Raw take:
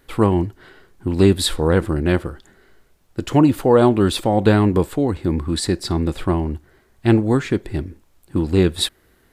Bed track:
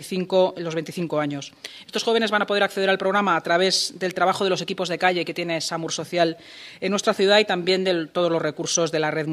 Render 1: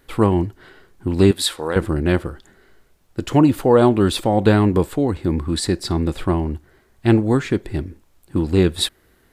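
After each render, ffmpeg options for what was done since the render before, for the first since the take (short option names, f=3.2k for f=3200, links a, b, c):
-filter_complex "[0:a]asettb=1/sr,asplit=3[a][b][c];[a]atrim=end=1.314[d];[b]atrim=start=1.31:end=1.76,asetpts=PTS-STARTPTS,afade=t=in:d=0.004:c=qsin,afade=t=out:st=0.446:d=0.004:c=qsin,highpass=f=780:p=1[e];[c]atrim=start=1.756[f];[d][e]acrossfade=d=0.004:c1=hsin:c2=qsin[g];[g][f]acrossfade=d=0.004:c1=qsin:c2=hsin"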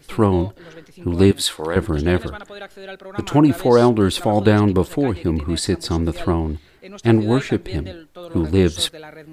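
-filter_complex "[1:a]volume=-15dB[a];[0:a][a]amix=inputs=2:normalize=0"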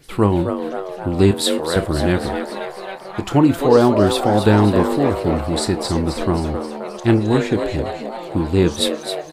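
-filter_complex "[0:a]asplit=2[a][b];[b]adelay=29,volume=-13dB[c];[a][c]amix=inputs=2:normalize=0,asplit=2[d][e];[e]asplit=7[f][g][h][i][j][k][l];[f]adelay=265,afreqshift=140,volume=-8dB[m];[g]adelay=530,afreqshift=280,volume=-12.7dB[n];[h]adelay=795,afreqshift=420,volume=-17.5dB[o];[i]adelay=1060,afreqshift=560,volume=-22.2dB[p];[j]adelay=1325,afreqshift=700,volume=-26.9dB[q];[k]adelay=1590,afreqshift=840,volume=-31.7dB[r];[l]adelay=1855,afreqshift=980,volume=-36.4dB[s];[m][n][o][p][q][r][s]amix=inputs=7:normalize=0[t];[d][t]amix=inputs=2:normalize=0"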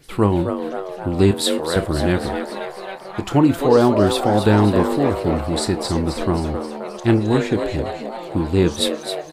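-af "volume=-1dB,alimiter=limit=-3dB:level=0:latency=1"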